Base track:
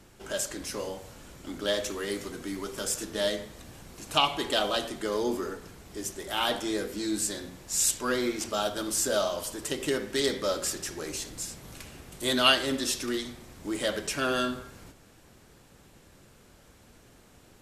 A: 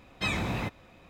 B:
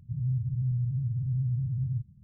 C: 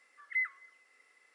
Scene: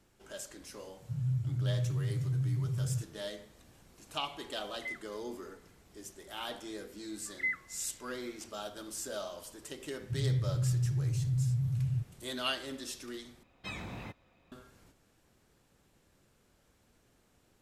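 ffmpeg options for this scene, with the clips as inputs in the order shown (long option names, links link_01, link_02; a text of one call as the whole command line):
ffmpeg -i bed.wav -i cue0.wav -i cue1.wav -i cue2.wav -filter_complex "[2:a]asplit=2[link_01][link_02];[3:a]asplit=2[link_03][link_04];[0:a]volume=-12.5dB[link_05];[link_01]highpass=110[link_06];[link_05]asplit=2[link_07][link_08];[link_07]atrim=end=13.434[link_09];[1:a]atrim=end=1.09,asetpts=PTS-STARTPTS,volume=-12dB[link_10];[link_08]atrim=start=14.516[link_11];[link_06]atrim=end=2.23,asetpts=PTS-STARTPTS,volume=-1dB,afade=type=in:duration=0.004:curve=hsin,afade=type=out:start_time=2.226:duration=0.004:curve=hsin,adelay=1000[link_12];[link_03]atrim=end=1.34,asetpts=PTS-STARTPTS,volume=-9dB,afade=type=in:duration=0.004:curve=hsin,afade=type=out:start_time=1.336:duration=0.004:curve=hsin,adelay=4500[link_13];[link_04]atrim=end=1.34,asetpts=PTS-STARTPTS,volume=-1dB,afade=type=in:duration=0.004:curve=hsin,afade=type=out:start_time=1.336:duration=0.004:curve=hsin,adelay=7080[link_14];[link_02]atrim=end=2.23,asetpts=PTS-STARTPTS,volume=-1.5dB,afade=type=in:duration=0.004:curve=hsin,afade=type=out:start_time=2.226:duration=0.004:curve=hsin,adelay=10010[link_15];[link_09][link_10]acrossfade=duration=0.004:curve1=hsin:curve2=hsin[link_16];[link_16][link_11]acrossfade=duration=0.004:curve1=hsin:curve2=hsin[link_17];[link_17][link_12][link_13][link_14][link_15]amix=inputs=5:normalize=0" out.wav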